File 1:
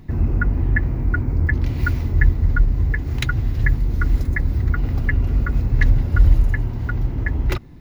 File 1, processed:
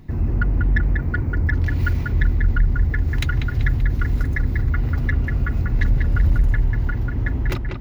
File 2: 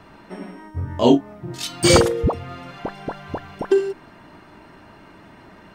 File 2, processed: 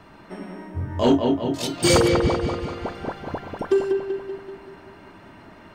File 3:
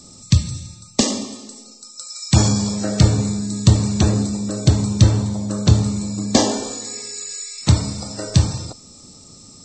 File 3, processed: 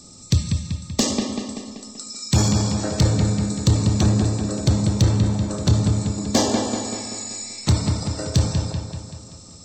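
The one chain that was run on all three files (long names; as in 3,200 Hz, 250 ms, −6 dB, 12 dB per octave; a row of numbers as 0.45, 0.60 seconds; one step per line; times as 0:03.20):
delay with a low-pass on its return 192 ms, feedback 54%, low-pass 3,400 Hz, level −5 dB
soft clipping −7.5 dBFS
level −1.5 dB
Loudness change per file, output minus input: −1.0, −2.5, −2.5 LU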